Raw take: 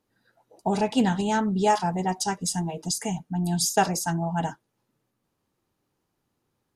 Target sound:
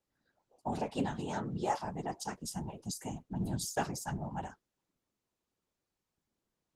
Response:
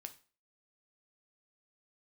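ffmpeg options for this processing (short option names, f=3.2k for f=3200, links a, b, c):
-af "aphaser=in_gain=1:out_gain=1:delay=3.2:decay=0.21:speed=0.3:type=sinusoidal,afftfilt=real='hypot(re,im)*cos(2*PI*random(0))':imag='hypot(re,im)*sin(2*PI*random(1))':win_size=512:overlap=0.75,volume=-5.5dB" -ar 48000 -c:a libopus -b:a 16k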